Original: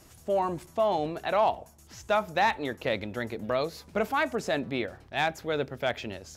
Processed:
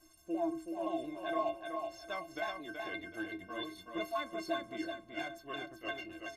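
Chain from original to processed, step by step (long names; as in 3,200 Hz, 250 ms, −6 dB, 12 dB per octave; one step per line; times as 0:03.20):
pitch shifter swept by a sawtooth −3.5 semitones, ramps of 173 ms
stiff-string resonator 320 Hz, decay 0.25 s, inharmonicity 0.03
repeating echo 376 ms, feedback 31%, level −5 dB
level +6 dB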